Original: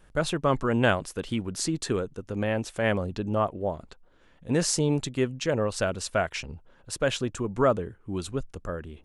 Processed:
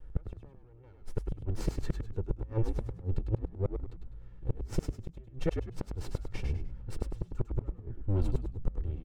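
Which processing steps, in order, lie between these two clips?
minimum comb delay 2.2 ms; tilt -4 dB/oct; flipped gate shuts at -10 dBFS, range -35 dB; on a send: frequency-shifting echo 0.101 s, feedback 31%, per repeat -61 Hz, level -5 dB; on the sum: gain -6.5 dB

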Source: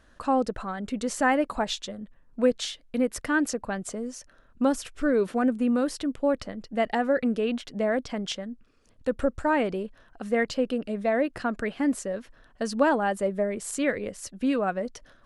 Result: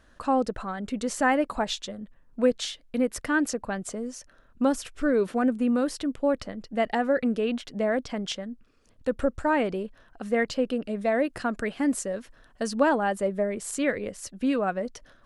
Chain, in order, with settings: 11.01–12.69 bell 9200 Hz +5.5 dB 1.4 oct

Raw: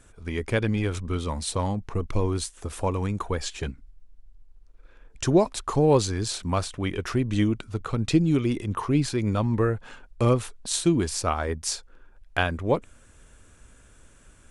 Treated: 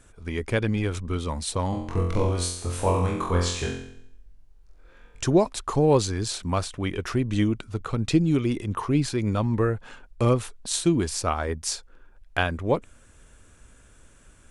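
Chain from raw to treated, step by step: 1.7–5.24 flutter echo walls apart 3.9 m, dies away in 0.69 s

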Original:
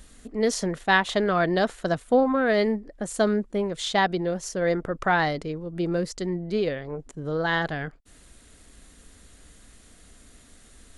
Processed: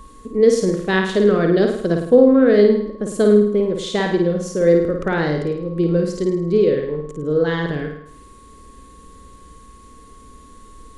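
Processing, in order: whine 1100 Hz -39 dBFS; resonant low shelf 580 Hz +6.5 dB, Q 3; flutter echo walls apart 9.1 m, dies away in 0.65 s; gain -1 dB

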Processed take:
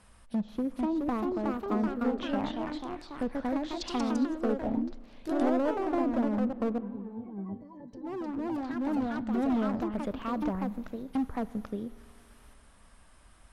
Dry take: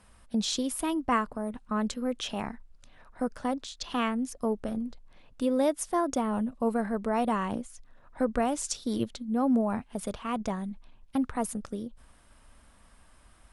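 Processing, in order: treble ducked by the level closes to 630 Hz, closed at -25.5 dBFS; 6.78–9.16 octave resonator G, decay 0.2 s; overloaded stage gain 25 dB; spring tank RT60 2.2 s, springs 47 ms, chirp 45 ms, DRR 18 dB; echoes that change speed 0.486 s, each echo +2 st, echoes 3

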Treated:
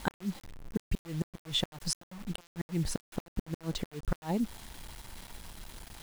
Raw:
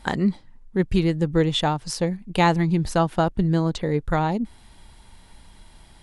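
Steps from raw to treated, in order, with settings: compressor 4:1, threshold -26 dBFS, peak gain reduction 10.5 dB; flipped gate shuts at -19 dBFS, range -29 dB; requantised 8-bit, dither none

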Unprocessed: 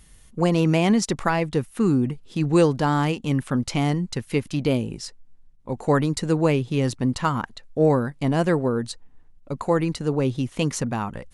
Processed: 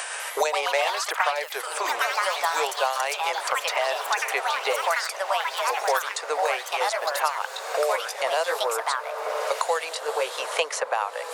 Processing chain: gliding pitch shift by -2.5 st ending unshifted; steep high-pass 520 Hz 48 dB/oct; echoes that change speed 0.2 s, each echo +4 st, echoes 3; on a send: diffused feedback echo 1.479 s, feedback 44%, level -14.5 dB; on the sum: three-band squash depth 100%; gain +3 dB

